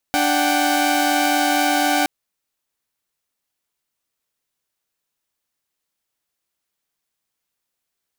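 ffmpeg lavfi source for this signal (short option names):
-f lavfi -i "aevalsrc='0.126*((2*mod(293.66*t,1)-1)+(2*mod(739.99*t,1)-1)+(2*mod(783.99*t,1)-1))':d=1.92:s=44100"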